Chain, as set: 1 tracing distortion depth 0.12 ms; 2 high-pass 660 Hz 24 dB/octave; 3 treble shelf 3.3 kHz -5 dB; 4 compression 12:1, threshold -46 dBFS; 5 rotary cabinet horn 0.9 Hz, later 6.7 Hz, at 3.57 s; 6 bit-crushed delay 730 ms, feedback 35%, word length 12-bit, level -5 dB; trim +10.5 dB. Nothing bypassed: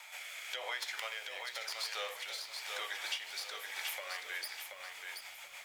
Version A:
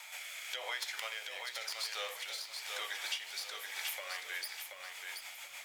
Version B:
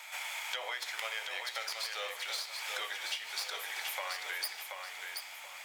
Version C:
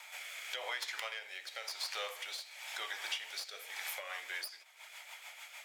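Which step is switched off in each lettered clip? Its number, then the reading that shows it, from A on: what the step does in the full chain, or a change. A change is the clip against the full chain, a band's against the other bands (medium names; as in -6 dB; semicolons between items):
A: 3, 8 kHz band +2.5 dB; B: 5, momentary loudness spread change -2 LU; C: 6, momentary loudness spread change +4 LU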